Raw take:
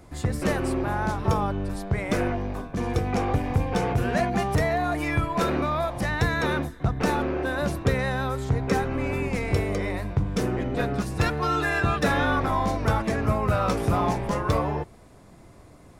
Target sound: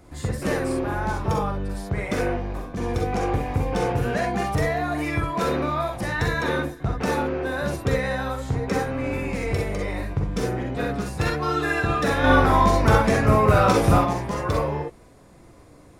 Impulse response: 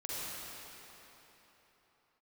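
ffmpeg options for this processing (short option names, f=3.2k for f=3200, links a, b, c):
-filter_complex "[0:a]asettb=1/sr,asplit=3[a][b][c];[a]atrim=end=12.244[d];[b]atrim=start=12.24:end=13.99,asetpts=PTS-STARTPTS,afade=t=in:d=0.004:c=qsin,afade=t=out:st=1.746:d=0.004:c=qsin,acontrast=81[e];[c]atrim=start=13.986[f];[d][e]acrossfade=d=0.004:c1=hsin:c2=qsin[g];[g][f]acrossfade=d=0.004:c1=qsin:c2=hsin[h];[1:a]atrim=start_sample=2205,atrim=end_sample=3087[i];[h][i]afir=irnorm=-1:irlink=0,volume=4dB"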